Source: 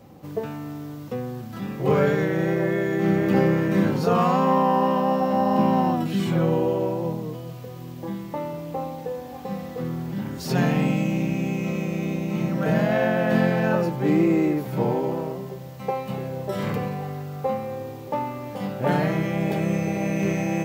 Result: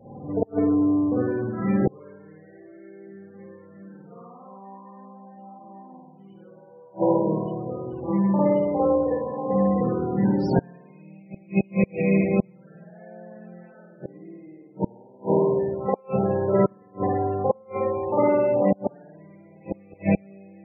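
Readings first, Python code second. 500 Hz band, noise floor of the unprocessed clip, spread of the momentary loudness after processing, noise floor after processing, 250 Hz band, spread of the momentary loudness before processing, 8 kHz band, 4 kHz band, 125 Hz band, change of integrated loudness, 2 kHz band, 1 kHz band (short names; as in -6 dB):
0.0 dB, -37 dBFS, 16 LU, -50 dBFS, -1.5 dB, 13 LU, under -25 dB, under -15 dB, -4.5 dB, +0.5 dB, -9.5 dB, -5.0 dB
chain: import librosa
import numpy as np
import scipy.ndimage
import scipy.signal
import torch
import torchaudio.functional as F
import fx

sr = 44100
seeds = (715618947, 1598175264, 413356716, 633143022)

y = fx.low_shelf(x, sr, hz=120.0, db=-4.0)
y = fx.rev_spring(y, sr, rt60_s=1.2, pass_ms=(51,), chirp_ms=70, drr_db=-9.0)
y = fx.gate_flip(y, sr, shuts_db=-8.0, range_db=-34)
y = fx.spec_topn(y, sr, count=32)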